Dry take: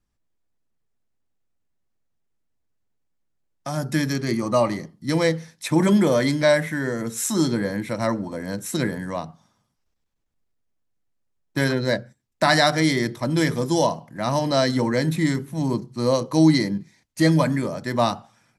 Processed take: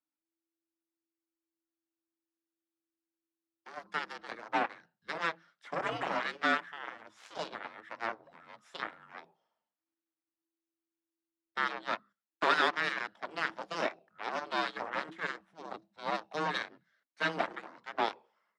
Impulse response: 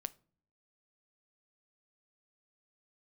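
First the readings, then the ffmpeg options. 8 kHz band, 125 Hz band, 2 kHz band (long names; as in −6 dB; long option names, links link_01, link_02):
−25.0 dB, −30.5 dB, −6.5 dB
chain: -filter_complex "[0:a]asplit=2[link_01][link_02];[link_02]asoftclip=type=tanh:threshold=-17.5dB,volume=-5.5dB[link_03];[link_01][link_03]amix=inputs=2:normalize=0,aeval=exprs='0.708*(cos(1*acos(clip(val(0)/0.708,-1,1)))-cos(1*PI/2))+0.0251*(cos(5*acos(clip(val(0)/0.708,-1,1)))-cos(5*PI/2))+0.158*(cos(7*acos(clip(val(0)/0.708,-1,1)))-cos(7*PI/2))':channel_layout=same,afreqshift=-330,highpass=640,lowpass=2400,volume=-6.5dB"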